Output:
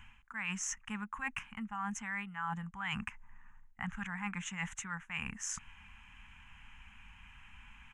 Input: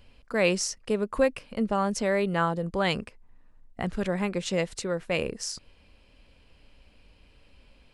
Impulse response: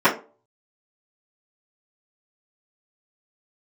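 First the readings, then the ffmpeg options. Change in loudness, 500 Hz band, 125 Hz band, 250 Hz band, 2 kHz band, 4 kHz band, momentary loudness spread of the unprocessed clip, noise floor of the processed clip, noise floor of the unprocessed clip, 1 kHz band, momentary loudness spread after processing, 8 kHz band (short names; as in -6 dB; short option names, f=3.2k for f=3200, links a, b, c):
-11.5 dB, -37.5 dB, -11.5 dB, -13.0 dB, -5.5 dB, -12.0 dB, 9 LU, -60 dBFS, -59 dBFS, -9.5 dB, 18 LU, -5.0 dB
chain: -af "firequalizer=gain_entry='entry(220,0);entry(330,-22);entry(560,-29);entry(820,7);entry(1700,12);entry(3100,3);entry(4500,-23);entry(6400,8);entry(9200,-4)':delay=0.05:min_phase=1,areverse,acompressor=threshold=-37dB:ratio=6,areverse"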